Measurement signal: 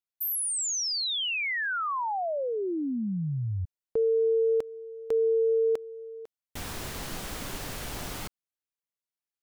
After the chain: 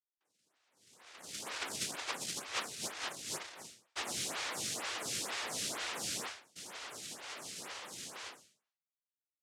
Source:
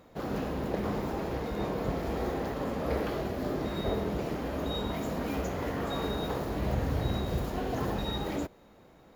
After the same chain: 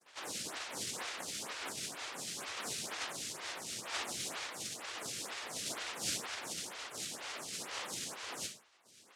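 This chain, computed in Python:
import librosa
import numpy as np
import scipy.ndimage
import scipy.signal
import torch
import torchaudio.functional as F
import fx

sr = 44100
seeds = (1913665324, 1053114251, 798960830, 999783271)

y = fx.fuzz(x, sr, gain_db=54.0, gate_db=-51.0)
y = fx.ladder_lowpass(y, sr, hz=2700.0, resonance_pct=25)
y = fx.resonator_bank(y, sr, root=50, chord='fifth', decay_s=0.51)
y = fx.noise_vocoder(y, sr, seeds[0], bands=1)
y = fx.stagger_phaser(y, sr, hz=2.1)
y = y * librosa.db_to_amplitude(-2.0)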